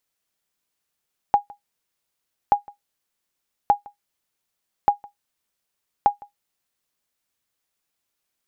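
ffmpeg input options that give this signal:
ffmpeg -f lavfi -i "aevalsrc='0.473*(sin(2*PI*818*mod(t,1.18))*exp(-6.91*mod(t,1.18)/0.13)+0.0562*sin(2*PI*818*max(mod(t,1.18)-0.16,0))*exp(-6.91*max(mod(t,1.18)-0.16,0)/0.13))':duration=5.9:sample_rate=44100" out.wav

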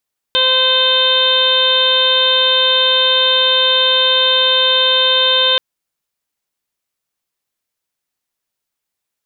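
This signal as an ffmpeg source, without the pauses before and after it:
ffmpeg -f lavfi -i "aevalsrc='0.112*sin(2*PI*517*t)+0.0794*sin(2*PI*1034*t)+0.0794*sin(2*PI*1551*t)+0.0251*sin(2*PI*2068*t)+0.0562*sin(2*PI*2585*t)+0.168*sin(2*PI*3102*t)+0.224*sin(2*PI*3619*t)+0.0316*sin(2*PI*4136*t)':duration=5.23:sample_rate=44100" out.wav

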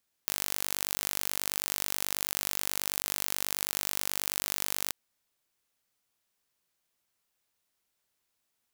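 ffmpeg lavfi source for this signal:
ffmpeg -f lavfi -i "aevalsrc='0.631*eq(mod(n,895),0)':duration=4.64:sample_rate=44100" out.wav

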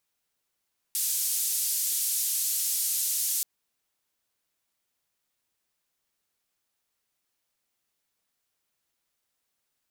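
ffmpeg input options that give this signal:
ffmpeg -f lavfi -i "anoisesrc=color=white:duration=2.48:sample_rate=44100:seed=1,highpass=frequency=6100,lowpass=frequency=14000,volume=-18.5dB" out.wav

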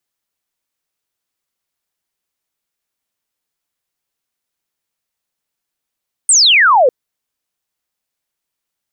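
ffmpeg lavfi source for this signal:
ffmpeg -f lavfi -i "aevalsrc='0.501*clip(t/0.002,0,1)*clip((0.6-t)/0.002,0,1)*sin(2*PI*9000*0.6/log(470/9000)*(exp(log(470/9000)*t/0.6)-1))':duration=0.6:sample_rate=44100" out.wav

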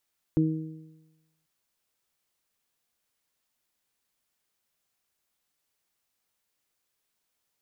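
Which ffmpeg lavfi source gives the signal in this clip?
ffmpeg -f lavfi -i "aevalsrc='0.0794*pow(10,-3*t/1.1)*sin(2*PI*158*t)+0.106*pow(10,-3*t/0.9)*sin(2*PI*316*t)+0.0158*pow(10,-3*t/1.04)*sin(2*PI*474*t)':duration=1.09:sample_rate=44100" out.wav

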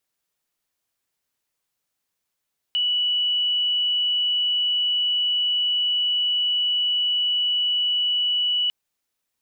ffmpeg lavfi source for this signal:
ffmpeg -f lavfi -i "sine=frequency=2950:duration=5.95:sample_rate=44100,volume=-0.94dB" out.wav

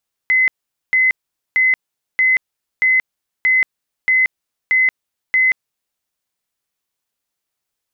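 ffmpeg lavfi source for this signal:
ffmpeg -f lavfi -i "aevalsrc='0.299*sin(2*PI*2040*mod(t,0.63))*lt(mod(t,0.63),365/2040)':duration=5.67:sample_rate=44100" out.wav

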